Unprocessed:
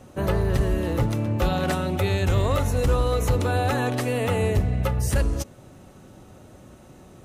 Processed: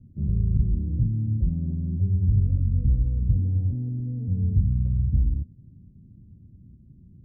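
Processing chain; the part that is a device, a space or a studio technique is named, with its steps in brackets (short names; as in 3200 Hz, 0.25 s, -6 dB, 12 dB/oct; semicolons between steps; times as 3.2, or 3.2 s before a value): the neighbour's flat through the wall (LPF 210 Hz 24 dB/oct; bell 82 Hz +3 dB 0.77 oct)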